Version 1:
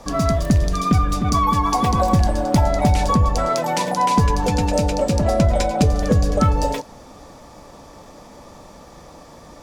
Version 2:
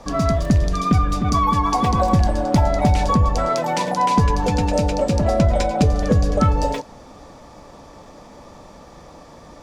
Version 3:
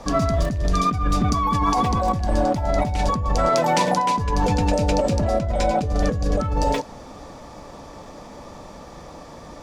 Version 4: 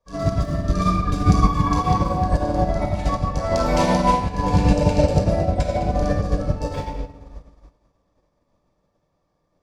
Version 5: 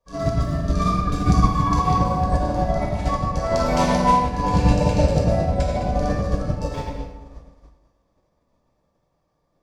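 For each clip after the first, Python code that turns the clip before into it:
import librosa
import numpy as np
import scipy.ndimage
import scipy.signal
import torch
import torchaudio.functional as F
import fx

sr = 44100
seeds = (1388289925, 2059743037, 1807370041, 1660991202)

y1 = fx.high_shelf(x, sr, hz=9400.0, db=-11.0)
y2 = fx.over_compress(y1, sr, threshold_db=-20.0, ratio=-1.0)
y3 = fx.room_shoebox(y2, sr, seeds[0], volume_m3=2800.0, walls='mixed', distance_m=5.4)
y3 = fx.upward_expand(y3, sr, threshold_db=-30.0, expansion=2.5)
y3 = y3 * librosa.db_to_amplitude(-3.5)
y4 = fx.rev_plate(y3, sr, seeds[1], rt60_s=0.81, hf_ratio=0.8, predelay_ms=0, drr_db=4.0)
y4 = y4 * librosa.db_to_amplitude(-1.5)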